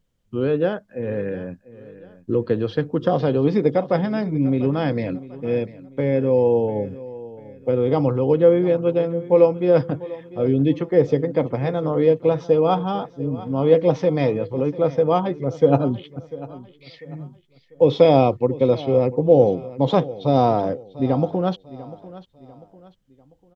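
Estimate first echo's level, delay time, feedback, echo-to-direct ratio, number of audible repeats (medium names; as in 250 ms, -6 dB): -17.5 dB, 695 ms, 38%, -17.0 dB, 3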